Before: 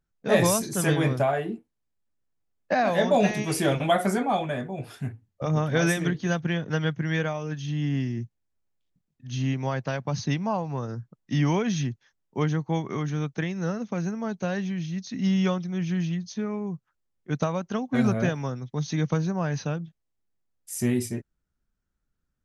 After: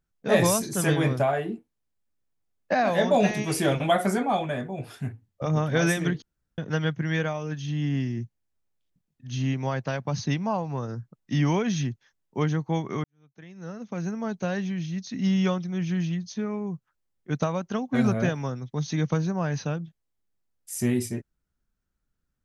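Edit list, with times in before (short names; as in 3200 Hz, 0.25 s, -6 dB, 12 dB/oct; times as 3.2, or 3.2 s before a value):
6.22–6.58 room tone
13.04–14.14 fade in quadratic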